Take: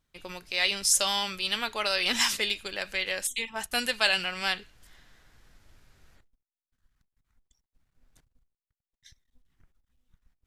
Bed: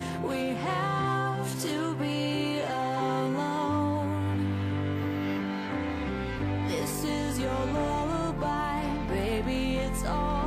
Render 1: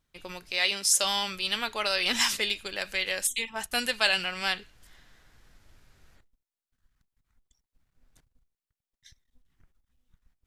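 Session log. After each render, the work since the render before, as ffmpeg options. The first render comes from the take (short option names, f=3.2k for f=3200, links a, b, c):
-filter_complex "[0:a]asettb=1/sr,asplit=3[a][b][c];[a]atrim=end=0.584[d];[b]atrim=start=0.58:end=1.04,asetpts=PTS-STARTPTS,afade=t=in:d=0.004:c=qsin,afade=t=out:st=0.456:d=0.004:c=qsin,highpass=190[e];[c]atrim=start=1.036[f];[d][e]acrossfade=d=0.004:c1=hsin:c2=qsin[g];[g][f]acrossfade=d=0.004:c1=qsin:c2=hsin,asettb=1/sr,asplit=3[h][i][j];[h]atrim=end=2.764[k];[i]atrim=start=2.76:end=3.44,asetpts=PTS-STARTPTS,afade=t=in:d=0.004:c=qsin,afade=t=out:st=0.676:d=0.004:c=qsin,highshelf=f=5.3k:g=4.5[l];[j]atrim=start=3.436[m];[k][l]acrossfade=d=0.004:c1=hsin:c2=qsin[n];[n][m]acrossfade=d=0.004:c1=qsin:c2=hsin"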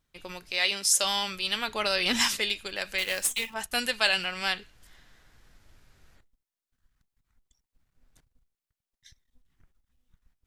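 -filter_complex "[0:a]asettb=1/sr,asplit=3[a][b][c];[a]atrim=end=1.684[d];[b]atrim=start=1.68:end=2.28,asetpts=PTS-STARTPTS,afade=t=in:d=0.004:c=qsin,afade=t=out:st=0.596:d=0.004:c=qsin,equalizer=f=110:w=0.34:g=7.5[e];[c]atrim=start=2.276[f];[d][e]acrossfade=d=0.004:c1=hsin:c2=qsin[g];[g][f]acrossfade=d=0.004:c1=qsin:c2=hsin,asettb=1/sr,asplit=3[h][i][j];[h]atrim=end=2.984[k];[i]atrim=start=2.98:end=3.54,asetpts=PTS-STARTPTS,afade=t=in:d=0.004:c=qsin,afade=t=out:st=0.556:d=0.004:c=qsin,acrusher=bits=2:mode=log:mix=0:aa=0.000001[l];[j]atrim=start=3.536[m];[k][l]acrossfade=d=0.004:c1=hsin:c2=qsin[n];[n][m]acrossfade=d=0.004:c1=qsin:c2=hsin"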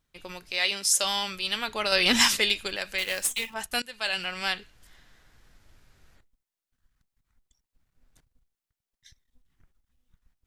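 -filter_complex "[0:a]asplit=4[a][b][c][d];[a]atrim=end=1.922[e];[b]atrim=start=1.918:end=2.762,asetpts=PTS-STARTPTS,volume=4.5dB[f];[c]atrim=start=2.758:end=3.82,asetpts=PTS-STARTPTS,afade=t=out:st=1.058:d=0.004:c=hsin:silence=0.0707946[g];[d]atrim=start=3.82,asetpts=PTS-STARTPTS,afade=t=in:d=0.49:silence=0.0707946[h];[e][f]acrossfade=d=0.004:c1=hsin:c2=hsin[i];[g][h]concat=n=2:v=0:a=1[j];[i][j]acrossfade=d=0.004:c1=hsin:c2=hsin"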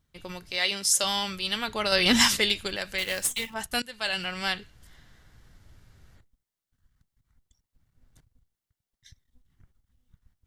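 -af "equalizer=f=100:w=0.58:g=9,bandreject=f=2.5k:w=15"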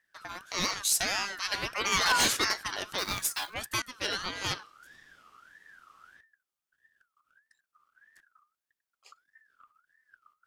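-af "asoftclip=type=hard:threshold=-17dB,aeval=exprs='val(0)*sin(2*PI*1500*n/s+1500*0.2/1.6*sin(2*PI*1.6*n/s))':c=same"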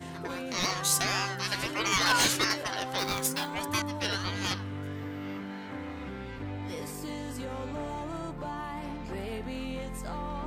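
-filter_complex "[1:a]volume=-7.5dB[a];[0:a][a]amix=inputs=2:normalize=0"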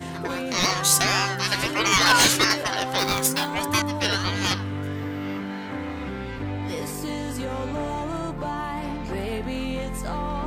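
-af "volume=7.5dB"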